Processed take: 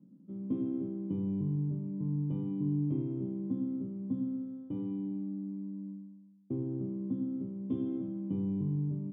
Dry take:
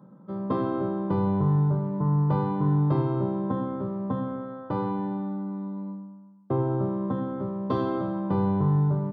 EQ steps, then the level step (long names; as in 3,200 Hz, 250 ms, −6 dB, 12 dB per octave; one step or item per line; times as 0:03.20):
formant resonators in series i
high-frequency loss of the air 150 metres
0.0 dB